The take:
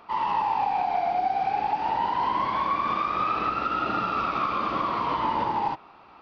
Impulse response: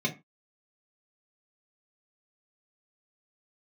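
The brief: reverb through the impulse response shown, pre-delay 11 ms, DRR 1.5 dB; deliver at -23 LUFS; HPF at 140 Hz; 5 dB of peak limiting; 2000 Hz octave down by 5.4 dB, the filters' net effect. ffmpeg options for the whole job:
-filter_complex "[0:a]highpass=140,equalizer=f=2k:t=o:g=-7.5,alimiter=limit=-22dB:level=0:latency=1,asplit=2[a][b];[1:a]atrim=start_sample=2205,adelay=11[c];[b][c]afir=irnorm=-1:irlink=0,volume=-9.5dB[d];[a][d]amix=inputs=2:normalize=0,volume=5dB"

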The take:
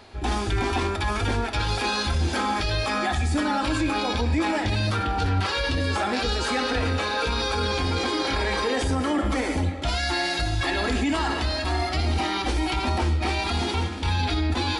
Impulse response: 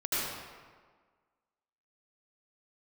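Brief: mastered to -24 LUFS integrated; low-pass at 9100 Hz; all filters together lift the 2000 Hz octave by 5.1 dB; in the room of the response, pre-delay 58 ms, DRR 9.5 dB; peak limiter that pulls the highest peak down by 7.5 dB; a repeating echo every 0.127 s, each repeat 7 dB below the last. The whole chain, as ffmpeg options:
-filter_complex "[0:a]lowpass=9.1k,equalizer=f=2k:t=o:g=6.5,alimiter=limit=-18dB:level=0:latency=1,aecho=1:1:127|254|381|508|635:0.447|0.201|0.0905|0.0407|0.0183,asplit=2[a][b];[1:a]atrim=start_sample=2205,adelay=58[c];[b][c]afir=irnorm=-1:irlink=0,volume=-18dB[d];[a][d]amix=inputs=2:normalize=0,volume=1dB"

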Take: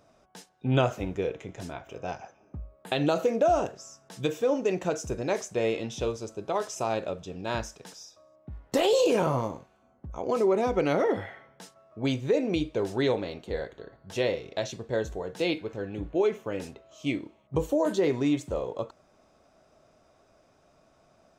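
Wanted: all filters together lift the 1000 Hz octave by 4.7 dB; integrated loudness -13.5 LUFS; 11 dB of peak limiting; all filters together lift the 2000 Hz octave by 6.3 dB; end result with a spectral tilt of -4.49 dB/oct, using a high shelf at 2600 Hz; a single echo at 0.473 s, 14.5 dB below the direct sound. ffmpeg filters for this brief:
-af "equalizer=f=1k:t=o:g=5,equalizer=f=2k:t=o:g=3.5,highshelf=f=2.6k:g=6.5,alimiter=limit=-18dB:level=0:latency=1,aecho=1:1:473:0.188,volume=16.5dB"

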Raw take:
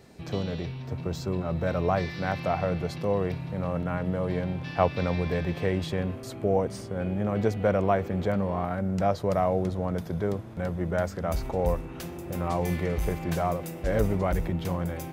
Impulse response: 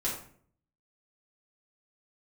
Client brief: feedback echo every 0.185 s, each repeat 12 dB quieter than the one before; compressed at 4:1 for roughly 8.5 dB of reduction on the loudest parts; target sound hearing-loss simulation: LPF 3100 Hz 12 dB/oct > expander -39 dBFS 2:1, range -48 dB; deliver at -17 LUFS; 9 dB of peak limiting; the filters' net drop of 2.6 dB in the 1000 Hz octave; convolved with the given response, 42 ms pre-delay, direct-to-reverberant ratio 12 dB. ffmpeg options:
-filter_complex "[0:a]equalizer=f=1k:t=o:g=-4,acompressor=threshold=-29dB:ratio=4,alimiter=level_in=0.5dB:limit=-24dB:level=0:latency=1,volume=-0.5dB,aecho=1:1:185|370|555:0.251|0.0628|0.0157,asplit=2[a][b];[1:a]atrim=start_sample=2205,adelay=42[c];[b][c]afir=irnorm=-1:irlink=0,volume=-17.5dB[d];[a][d]amix=inputs=2:normalize=0,lowpass=3.1k,agate=range=-48dB:threshold=-39dB:ratio=2,volume=18dB"

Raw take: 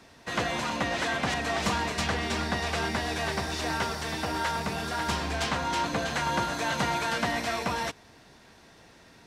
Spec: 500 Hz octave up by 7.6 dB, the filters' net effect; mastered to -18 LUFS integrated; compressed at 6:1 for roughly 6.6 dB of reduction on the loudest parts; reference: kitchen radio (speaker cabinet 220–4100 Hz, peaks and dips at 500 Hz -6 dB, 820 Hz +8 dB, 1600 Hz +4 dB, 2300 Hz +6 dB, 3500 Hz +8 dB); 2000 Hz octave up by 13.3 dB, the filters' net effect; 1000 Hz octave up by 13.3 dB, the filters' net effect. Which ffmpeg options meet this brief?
-af "equalizer=f=500:t=o:g=7,equalizer=f=1k:t=o:g=7.5,equalizer=f=2k:t=o:g=8,acompressor=threshold=-23dB:ratio=6,highpass=220,equalizer=f=500:t=q:w=4:g=-6,equalizer=f=820:t=q:w=4:g=8,equalizer=f=1.6k:t=q:w=4:g=4,equalizer=f=2.3k:t=q:w=4:g=6,equalizer=f=3.5k:t=q:w=4:g=8,lowpass=f=4.1k:w=0.5412,lowpass=f=4.1k:w=1.3066,volume=5dB"

